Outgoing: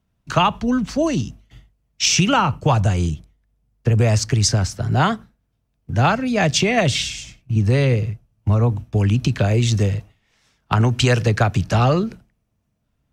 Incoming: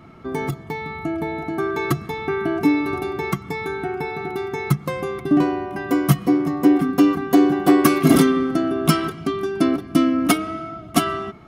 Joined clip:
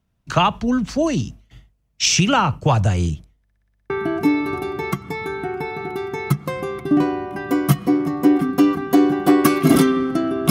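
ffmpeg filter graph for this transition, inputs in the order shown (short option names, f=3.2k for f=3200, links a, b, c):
-filter_complex "[0:a]apad=whole_dur=10.5,atrim=end=10.5,asplit=8[a][b][c][d][e][f][g][h];[a]atrim=end=3.482[i];[b]atrim=start=3.418:end=3.482[j];[c]atrim=start=3.418:end=3.482[k];[d]atrim=start=3.418:end=3.482[l];[e]atrim=start=3.418:end=3.482[m];[f]atrim=start=3.418:end=3.482[n];[g]atrim=start=3.418:end=3.482[o];[h]atrim=start=3.418:end=3.482[p];[1:a]atrim=start=2.298:end=8.9[q];[i][j]acrossfade=d=0.004:c1=hsin:c2=hsin[r];[r][k]acrossfade=d=0.004:c1=hsin:c2=hsin[s];[s][l]acrossfade=d=0.004:c1=hsin:c2=hsin[t];[t][m]acrossfade=d=0.004:c1=hsin:c2=hsin[u];[u][n]acrossfade=d=0.004:c1=hsin:c2=hsin[v];[v][o]acrossfade=d=0.004:c1=hsin:c2=hsin[w];[w][p]acrossfade=d=0.004:c1=hsin:c2=hsin[x];[x][q]acrossfade=d=0.004:c1=hsin:c2=hsin"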